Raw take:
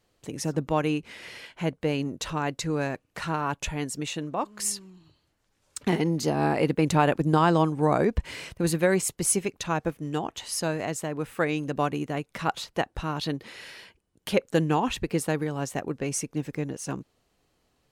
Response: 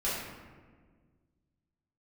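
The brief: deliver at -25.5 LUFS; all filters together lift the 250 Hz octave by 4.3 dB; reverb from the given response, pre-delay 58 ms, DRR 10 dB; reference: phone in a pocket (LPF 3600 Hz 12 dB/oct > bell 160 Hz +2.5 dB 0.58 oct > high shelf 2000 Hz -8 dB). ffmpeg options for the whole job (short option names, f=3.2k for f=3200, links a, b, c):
-filter_complex "[0:a]equalizer=f=250:t=o:g=5.5,asplit=2[a][b];[1:a]atrim=start_sample=2205,adelay=58[c];[b][c]afir=irnorm=-1:irlink=0,volume=-18dB[d];[a][d]amix=inputs=2:normalize=0,lowpass=3.6k,equalizer=f=160:t=o:w=0.58:g=2.5,highshelf=f=2k:g=-8,volume=-0.5dB"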